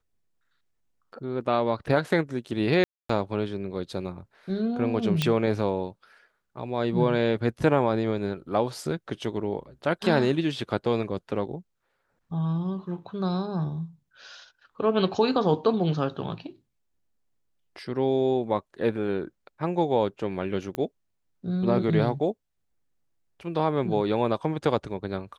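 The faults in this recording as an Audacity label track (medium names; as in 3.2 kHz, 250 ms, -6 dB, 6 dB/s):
2.840000	3.090000	dropout 254 ms
5.220000	5.220000	pop -10 dBFS
20.750000	20.750000	pop -17 dBFS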